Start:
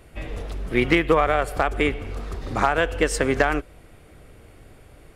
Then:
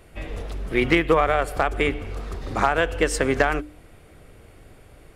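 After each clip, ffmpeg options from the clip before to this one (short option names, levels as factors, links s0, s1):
-af "bandreject=f=60:t=h:w=6,bandreject=f=120:t=h:w=6,bandreject=f=180:t=h:w=6,bandreject=f=240:t=h:w=6,bandreject=f=300:t=h:w=6"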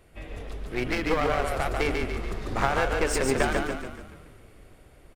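-filter_complex "[0:a]aeval=exprs='clip(val(0),-1,0.0596)':c=same,dynaudnorm=f=230:g=11:m=3.76,asplit=7[s0][s1][s2][s3][s4][s5][s6];[s1]adelay=143,afreqshift=-30,volume=0.668[s7];[s2]adelay=286,afreqshift=-60,volume=0.327[s8];[s3]adelay=429,afreqshift=-90,volume=0.16[s9];[s4]adelay=572,afreqshift=-120,volume=0.0785[s10];[s5]adelay=715,afreqshift=-150,volume=0.0385[s11];[s6]adelay=858,afreqshift=-180,volume=0.0188[s12];[s0][s7][s8][s9][s10][s11][s12]amix=inputs=7:normalize=0,volume=0.447"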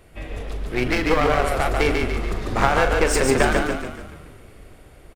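-filter_complex "[0:a]asplit=2[s0][s1];[s1]adelay=40,volume=0.266[s2];[s0][s2]amix=inputs=2:normalize=0,volume=2"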